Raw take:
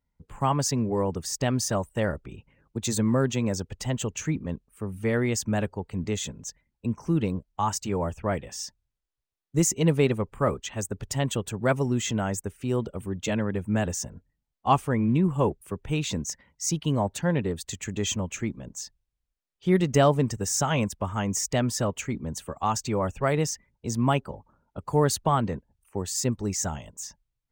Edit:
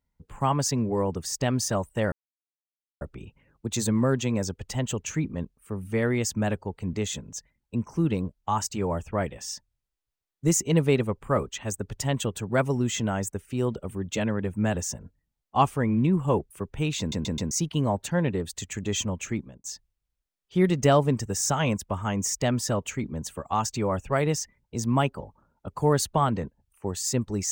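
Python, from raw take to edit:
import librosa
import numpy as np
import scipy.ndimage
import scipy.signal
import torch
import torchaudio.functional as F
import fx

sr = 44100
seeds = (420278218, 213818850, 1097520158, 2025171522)

y = fx.edit(x, sr, fx.insert_silence(at_s=2.12, length_s=0.89),
    fx.stutter_over(start_s=16.1, slice_s=0.13, count=4),
    fx.fade_out_span(start_s=18.49, length_s=0.26), tone=tone)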